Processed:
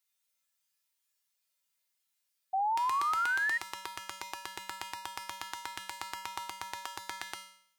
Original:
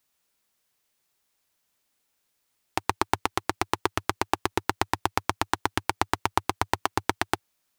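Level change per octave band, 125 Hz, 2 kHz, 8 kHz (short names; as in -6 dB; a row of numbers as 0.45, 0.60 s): under -25 dB, -2.0 dB, -7.5 dB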